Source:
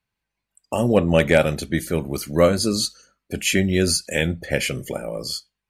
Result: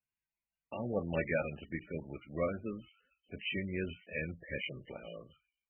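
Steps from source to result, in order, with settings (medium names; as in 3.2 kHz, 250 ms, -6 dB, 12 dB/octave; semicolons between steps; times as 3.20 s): pre-emphasis filter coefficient 0.8; bands offset in time lows, highs 440 ms, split 4.2 kHz; trim -4 dB; MP3 8 kbps 22.05 kHz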